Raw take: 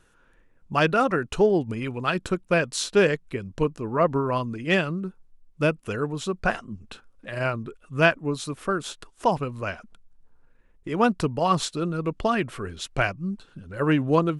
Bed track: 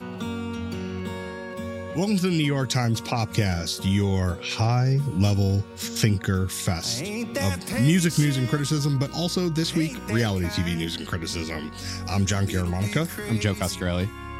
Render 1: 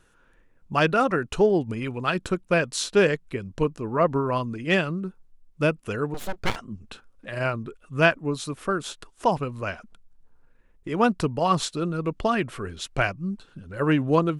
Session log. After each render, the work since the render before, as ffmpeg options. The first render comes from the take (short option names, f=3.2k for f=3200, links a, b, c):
-filter_complex "[0:a]asettb=1/sr,asplit=3[a][b][c];[a]atrim=end=6.144[d];[b]atrim=start=6.14:end=6.56,asetpts=PTS-STARTPTS,afade=t=in:d=0.004:c=qsin,afade=t=out:st=0.416:d=0.004:c=qsin,aeval=exprs='abs(val(0))':c=same[e];[c]atrim=start=6.556[f];[d][e]acrossfade=d=0.004:c1=hsin:c2=qsin[g];[g][f]acrossfade=d=0.004:c1=qsin:c2=hsin"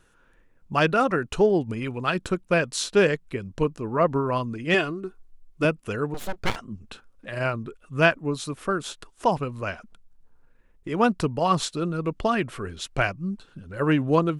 -filter_complex "[0:a]asettb=1/sr,asplit=3[a][b][c];[a]atrim=end=4.744[d];[b]atrim=start=4.74:end=5.65,asetpts=PTS-STARTPTS,afade=t=in:d=0.004:c=qsin,afade=t=out:st=0.906:d=0.004:c=qsin,aecho=1:1:2.8:0.66,atrim=end_sample=40131[e];[c]atrim=start=5.646[f];[d][e]acrossfade=d=0.004:c1=hsin:c2=qsin[g];[g][f]acrossfade=d=0.004:c1=qsin:c2=hsin"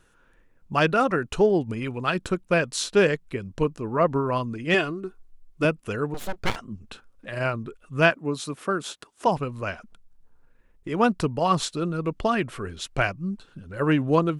-filter_complex "[0:a]asettb=1/sr,asplit=3[a][b][c];[a]atrim=end=8.104[d];[b]atrim=start=8.1:end=9.27,asetpts=PTS-STARTPTS,afade=t=in:d=0.004:c=qsin,afade=t=out:st=1.166:d=0.004:c=qsin,highpass=130[e];[c]atrim=start=9.266[f];[d][e]acrossfade=d=0.004:c1=hsin:c2=qsin[g];[g][f]acrossfade=d=0.004:c1=qsin:c2=hsin"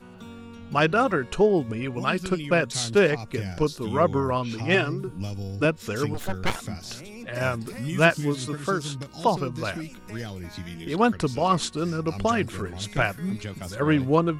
-filter_complex "[1:a]volume=-11.5dB[a];[0:a][a]amix=inputs=2:normalize=0"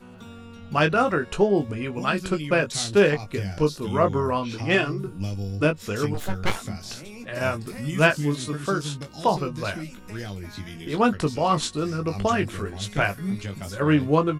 -filter_complex "[0:a]asplit=2[a][b];[b]adelay=20,volume=-7dB[c];[a][c]amix=inputs=2:normalize=0"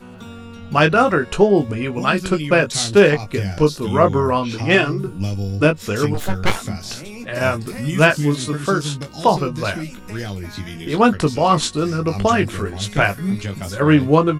-af "volume=6.5dB,alimiter=limit=-1dB:level=0:latency=1"